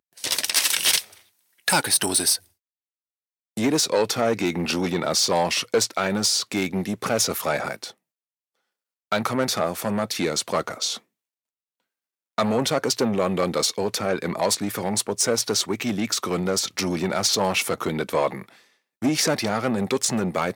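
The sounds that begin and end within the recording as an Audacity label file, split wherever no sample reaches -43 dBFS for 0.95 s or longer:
3.570000	7.910000	sound
9.120000	10.980000	sound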